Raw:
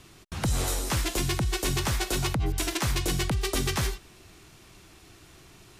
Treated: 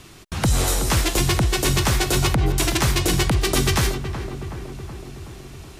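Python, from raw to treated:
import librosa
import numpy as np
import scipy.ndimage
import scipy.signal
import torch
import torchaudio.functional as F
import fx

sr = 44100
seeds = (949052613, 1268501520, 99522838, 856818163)

y = fx.echo_filtered(x, sr, ms=373, feedback_pct=70, hz=1700.0, wet_db=-9.5)
y = F.gain(torch.from_numpy(y), 7.5).numpy()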